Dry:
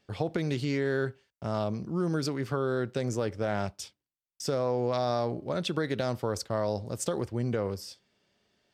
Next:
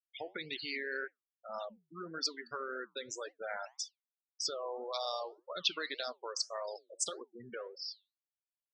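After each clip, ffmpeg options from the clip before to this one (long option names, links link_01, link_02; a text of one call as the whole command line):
ffmpeg -i in.wav -af "bandpass=frequency=4200:width_type=q:width=0.78:csg=0,afftfilt=real='re*gte(hypot(re,im),0.0126)':imag='im*gte(hypot(re,im),0.0126)':win_size=1024:overlap=0.75,flanger=delay=4.4:depth=6.5:regen=-80:speed=1.8:shape=triangular,volume=9dB" out.wav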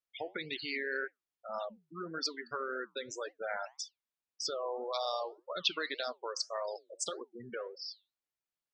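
ffmpeg -i in.wav -af "highshelf=frequency=6500:gain=-10.5,volume=3dB" out.wav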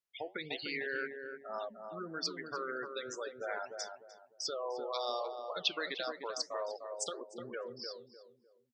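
ffmpeg -i in.wav -filter_complex "[0:a]asplit=2[link_01][link_02];[link_02]adelay=301,lowpass=frequency=920:poles=1,volume=-4dB,asplit=2[link_03][link_04];[link_04]adelay=301,lowpass=frequency=920:poles=1,volume=0.35,asplit=2[link_05][link_06];[link_06]adelay=301,lowpass=frequency=920:poles=1,volume=0.35,asplit=2[link_07][link_08];[link_08]adelay=301,lowpass=frequency=920:poles=1,volume=0.35[link_09];[link_01][link_03][link_05][link_07][link_09]amix=inputs=5:normalize=0,volume=-1.5dB" out.wav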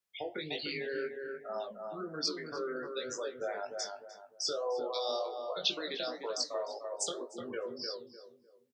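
ffmpeg -i in.wav -filter_complex "[0:a]acrossover=split=220|740|2800[link_01][link_02][link_03][link_04];[link_03]acompressor=threshold=-51dB:ratio=6[link_05];[link_01][link_02][link_05][link_04]amix=inputs=4:normalize=0,flanger=delay=9.6:depth=4.5:regen=-71:speed=1.9:shape=sinusoidal,asplit=2[link_06][link_07];[link_07]adelay=20,volume=-3.5dB[link_08];[link_06][link_08]amix=inputs=2:normalize=0,volume=7dB" out.wav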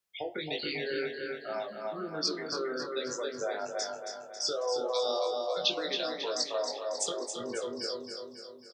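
ffmpeg -i in.wav -af "aecho=1:1:273|546|819|1092|1365|1638|1911:0.447|0.241|0.13|0.0703|0.038|0.0205|0.0111,volume=2.5dB" out.wav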